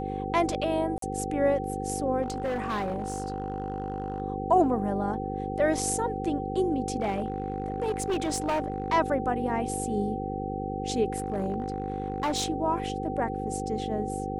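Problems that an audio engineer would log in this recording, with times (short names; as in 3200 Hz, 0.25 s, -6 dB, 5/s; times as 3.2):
buzz 50 Hz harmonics 10 -34 dBFS
tone 770 Hz -34 dBFS
0.98–1.02 gap 43 ms
2.22–4.22 clipped -26 dBFS
7–8.92 clipped -23.5 dBFS
11.18–12.5 clipped -23.5 dBFS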